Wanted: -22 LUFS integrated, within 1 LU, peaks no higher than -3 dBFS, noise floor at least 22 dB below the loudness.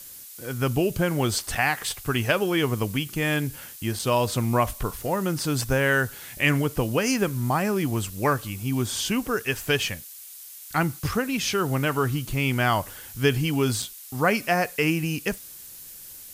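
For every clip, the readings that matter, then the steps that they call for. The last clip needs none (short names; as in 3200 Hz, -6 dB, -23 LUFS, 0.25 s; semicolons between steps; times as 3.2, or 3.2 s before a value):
dropouts 3; longest dropout 4.9 ms; noise floor -43 dBFS; noise floor target -47 dBFS; loudness -25.0 LUFS; peak -6.5 dBFS; loudness target -22.0 LUFS
-> interpolate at 1.55/3.99/13.82, 4.9 ms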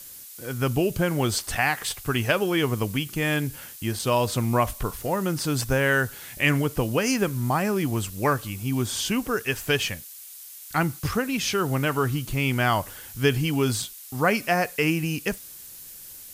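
dropouts 0; noise floor -43 dBFS; noise floor target -47 dBFS
-> denoiser 6 dB, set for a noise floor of -43 dBFS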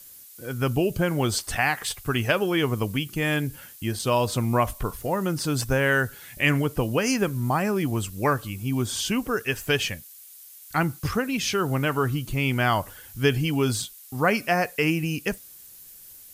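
noise floor -47 dBFS; loudness -25.0 LUFS; peak -6.5 dBFS; loudness target -22.0 LUFS
-> gain +3 dB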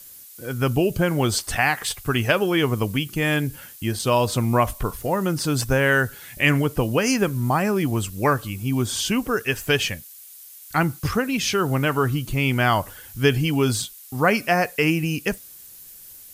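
loudness -22.0 LUFS; peak -3.5 dBFS; noise floor -44 dBFS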